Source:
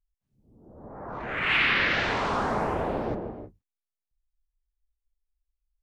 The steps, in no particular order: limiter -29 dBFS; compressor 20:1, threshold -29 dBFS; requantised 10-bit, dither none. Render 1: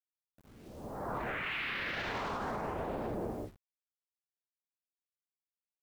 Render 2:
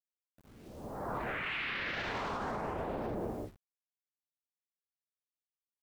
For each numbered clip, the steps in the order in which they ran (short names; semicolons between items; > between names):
compressor > requantised > limiter; requantised > compressor > limiter